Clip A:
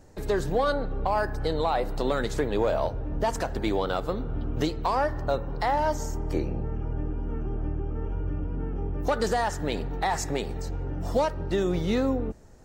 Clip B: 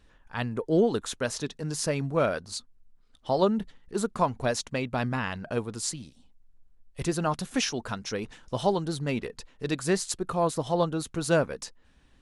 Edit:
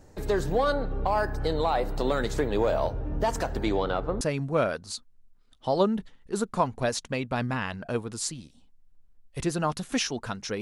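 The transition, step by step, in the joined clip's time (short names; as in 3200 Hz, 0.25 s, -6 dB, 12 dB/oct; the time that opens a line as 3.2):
clip A
3.63–4.21 LPF 10000 Hz -> 1200 Hz
4.21 switch to clip B from 1.83 s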